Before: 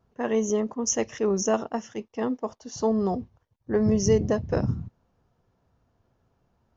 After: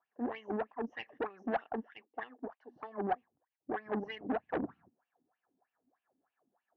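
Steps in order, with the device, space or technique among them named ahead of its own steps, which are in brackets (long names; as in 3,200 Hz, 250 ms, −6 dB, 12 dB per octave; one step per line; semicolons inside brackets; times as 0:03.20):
wah-wah guitar rig (LFO wah 3.2 Hz 240–2,800 Hz, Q 6.8; tube saturation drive 36 dB, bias 0.75; loudspeaker in its box 82–3,700 Hz, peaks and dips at 110 Hz −7 dB, 290 Hz +5 dB, 760 Hz +9 dB, 1,100 Hz +3 dB, 1,700 Hz +9 dB)
level +4.5 dB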